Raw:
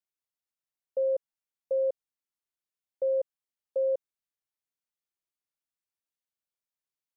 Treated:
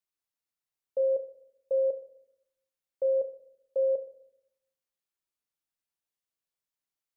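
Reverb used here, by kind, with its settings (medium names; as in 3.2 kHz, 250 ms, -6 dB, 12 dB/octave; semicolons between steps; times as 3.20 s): simulated room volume 150 m³, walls mixed, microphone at 0.31 m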